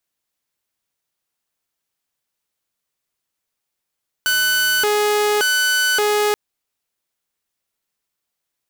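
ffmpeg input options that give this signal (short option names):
-f lavfi -i "aevalsrc='0.237*(2*mod((959*t+541/0.87*(0.5-abs(mod(0.87*t,1)-0.5))),1)-1)':d=2.08:s=44100"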